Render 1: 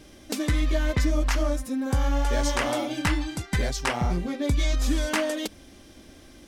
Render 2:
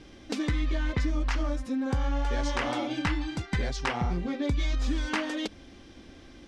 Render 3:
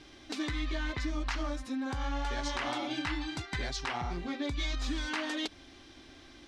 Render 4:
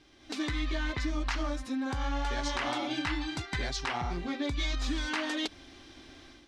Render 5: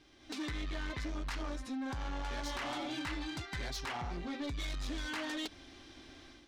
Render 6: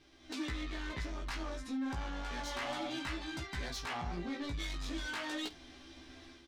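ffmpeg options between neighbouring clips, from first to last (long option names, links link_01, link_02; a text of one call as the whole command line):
ffmpeg -i in.wav -af "lowpass=4700,bandreject=frequency=610:width=12,acompressor=threshold=-27dB:ratio=2" out.wav
ffmpeg -i in.wav -af "lowshelf=frequency=220:gain=-7.5,alimiter=limit=-23.5dB:level=0:latency=1:release=89,equalizer=frequency=200:width_type=o:width=0.33:gain=-11,equalizer=frequency=500:width_type=o:width=0.33:gain=-9,equalizer=frequency=4000:width_type=o:width=0.33:gain=4" out.wav
ffmpeg -i in.wav -af "dynaudnorm=framelen=180:gausssize=3:maxgain=9.5dB,volume=-7.5dB" out.wav
ffmpeg -i in.wav -af "asoftclip=type=tanh:threshold=-32dB,volume=-2.5dB" out.wav
ffmpeg -i in.wav -af "flanger=delay=15:depth=3.3:speed=0.32,aecho=1:1:12|49:0.316|0.133,volume=2.5dB" out.wav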